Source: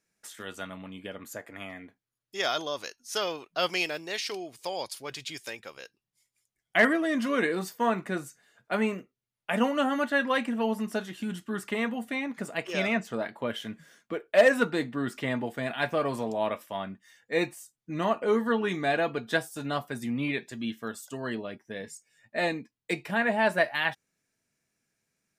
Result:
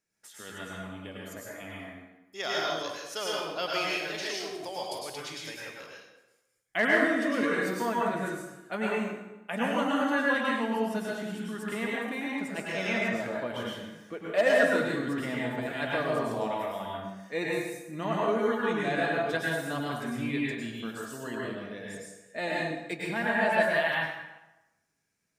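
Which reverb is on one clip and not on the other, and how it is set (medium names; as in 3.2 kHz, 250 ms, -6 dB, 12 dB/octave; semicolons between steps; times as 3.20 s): plate-style reverb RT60 1 s, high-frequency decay 0.75×, pre-delay 90 ms, DRR -4.5 dB; trim -6 dB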